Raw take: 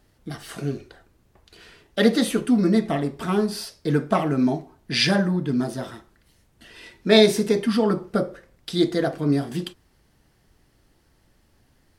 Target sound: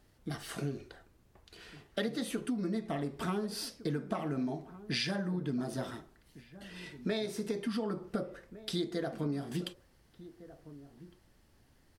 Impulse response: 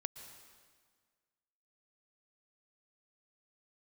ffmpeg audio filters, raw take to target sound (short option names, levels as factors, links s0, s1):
-filter_complex "[0:a]acompressor=threshold=0.0501:ratio=16,asplit=2[s0][s1];[s1]adelay=1458,volume=0.158,highshelf=f=4000:g=-32.8[s2];[s0][s2]amix=inputs=2:normalize=0,volume=0.596"